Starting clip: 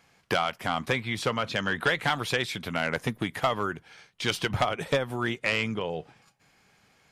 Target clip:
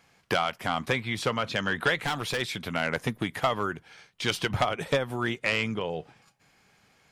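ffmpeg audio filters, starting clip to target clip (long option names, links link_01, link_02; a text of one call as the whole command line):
ffmpeg -i in.wav -filter_complex "[0:a]asplit=3[link_01][link_02][link_03];[link_01]afade=type=out:start_time=1.98:duration=0.02[link_04];[link_02]asoftclip=type=hard:threshold=-24dB,afade=type=in:start_time=1.98:duration=0.02,afade=type=out:start_time=2.4:duration=0.02[link_05];[link_03]afade=type=in:start_time=2.4:duration=0.02[link_06];[link_04][link_05][link_06]amix=inputs=3:normalize=0" out.wav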